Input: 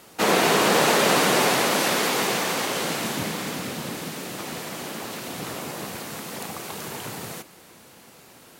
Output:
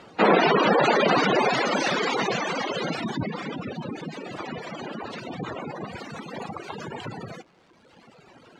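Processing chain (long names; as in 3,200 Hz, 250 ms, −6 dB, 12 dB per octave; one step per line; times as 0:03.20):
reverb reduction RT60 1.9 s
gate on every frequency bin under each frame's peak −15 dB strong
dynamic equaliser 6,400 Hz, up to +6 dB, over −51 dBFS, Q 1.5
surface crackle 430 per second −50 dBFS
high-frequency loss of the air 130 metres
level +4.5 dB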